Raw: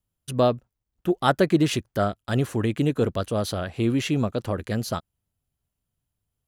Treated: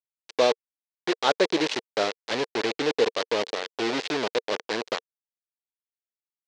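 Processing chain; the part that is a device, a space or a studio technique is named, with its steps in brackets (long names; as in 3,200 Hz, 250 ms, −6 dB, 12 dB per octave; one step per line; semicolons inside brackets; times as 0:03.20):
hand-held game console (bit reduction 4 bits; loudspeaker in its box 450–5,600 Hz, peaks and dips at 460 Hz +7 dB, 700 Hz −3 dB, 1,300 Hz −6 dB, 4,100 Hz +3 dB)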